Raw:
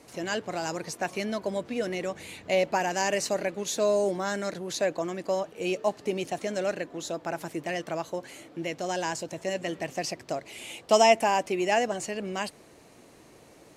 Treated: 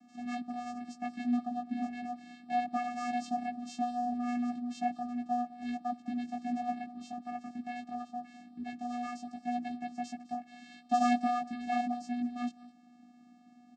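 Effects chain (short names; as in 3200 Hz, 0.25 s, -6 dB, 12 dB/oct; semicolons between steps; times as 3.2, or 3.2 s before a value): chorus 0.2 Hz, delay 15.5 ms, depth 3.7 ms; vocoder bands 8, square 243 Hz; echo 0.206 s -20 dB; gain -2.5 dB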